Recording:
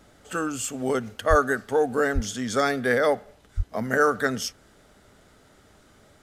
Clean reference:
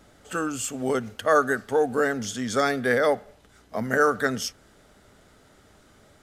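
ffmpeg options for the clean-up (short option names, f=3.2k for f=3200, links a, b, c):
-filter_complex "[0:a]asplit=3[a][b][c];[a]afade=t=out:st=1.29:d=0.02[d];[b]highpass=f=140:w=0.5412,highpass=f=140:w=1.3066,afade=t=in:st=1.29:d=0.02,afade=t=out:st=1.41:d=0.02[e];[c]afade=t=in:st=1.41:d=0.02[f];[d][e][f]amix=inputs=3:normalize=0,asplit=3[g][h][i];[g]afade=t=out:st=2.14:d=0.02[j];[h]highpass=f=140:w=0.5412,highpass=f=140:w=1.3066,afade=t=in:st=2.14:d=0.02,afade=t=out:st=2.26:d=0.02[k];[i]afade=t=in:st=2.26:d=0.02[l];[j][k][l]amix=inputs=3:normalize=0,asplit=3[m][n][o];[m]afade=t=out:st=3.56:d=0.02[p];[n]highpass=f=140:w=0.5412,highpass=f=140:w=1.3066,afade=t=in:st=3.56:d=0.02,afade=t=out:st=3.68:d=0.02[q];[o]afade=t=in:st=3.68:d=0.02[r];[p][q][r]amix=inputs=3:normalize=0"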